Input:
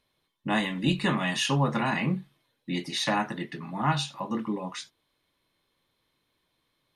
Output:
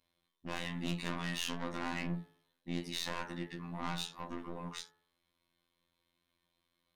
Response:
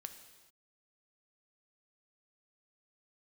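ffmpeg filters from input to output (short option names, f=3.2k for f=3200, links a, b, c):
-af "aeval=exprs='(tanh(28.2*val(0)+0.4)-tanh(0.4))/28.2':c=same,afftfilt=real='hypot(re,im)*cos(PI*b)':imag='0':win_size=2048:overlap=0.75,bandreject=f=53.84:t=h:w=4,bandreject=f=107.68:t=h:w=4,bandreject=f=161.52:t=h:w=4,bandreject=f=215.36:t=h:w=4,bandreject=f=269.2:t=h:w=4,bandreject=f=323.04:t=h:w=4,bandreject=f=376.88:t=h:w=4,bandreject=f=430.72:t=h:w=4,bandreject=f=484.56:t=h:w=4,bandreject=f=538.4:t=h:w=4,bandreject=f=592.24:t=h:w=4,bandreject=f=646.08:t=h:w=4,bandreject=f=699.92:t=h:w=4,bandreject=f=753.76:t=h:w=4,bandreject=f=807.6:t=h:w=4,bandreject=f=861.44:t=h:w=4,bandreject=f=915.28:t=h:w=4,bandreject=f=969.12:t=h:w=4,bandreject=f=1.02296k:t=h:w=4,bandreject=f=1.0768k:t=h:w=4,bandreject=f=1.13064k:t=h:w=4,bandreject=f=1.18448k:t=h:w=4,bandreject=f=1.23832k:t=h:w=4,bandreject=f=1.29216k:t=h:w=4,bandreject=f=1.346k:t=h:w=4,bandreject=f=1.39984k:t=h:w=4,bandreject=f=1.45368k:t=h:w=4,bandreject=f=1.50752k:t=h:w=4,bandreject=f=1.56136k:t=h:w=4,bandreject=f=1.6152k:t=h:w=4,bandreject=f=1.66904k:t=h:w=4,bandreject=f=1.72288k:t=h:w=4,bandreject=f=1.77672k:t=h:w=4,bandreject=f=1.83056k:t=h:w=4,bandreject=f=1.8844k:t=h:w=4,bandreject=f=1.93824k:t=h:w=4,volume=-1.5dB"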